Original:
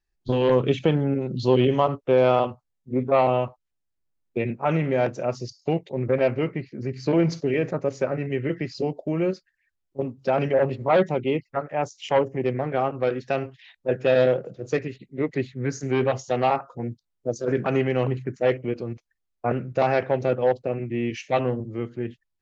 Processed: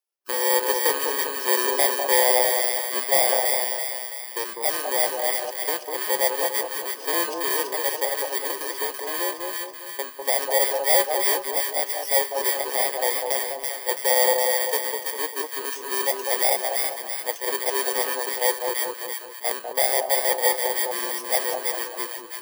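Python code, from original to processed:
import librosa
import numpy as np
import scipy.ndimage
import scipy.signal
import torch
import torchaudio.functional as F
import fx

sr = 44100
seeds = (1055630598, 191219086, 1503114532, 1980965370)

y = fx.bit_reversed(x, sr, seeds[0], block=32)
y = scipy.signal.sosfilt(scipy.signal.butter(4, 470.0, 'highpass', fs=sr, output='sos'), y)
y = fx.echo_split(y, sr, split_hz=1100.0, low_ms=199, high_ms=332, feedback_pct=52, wet_db=-3)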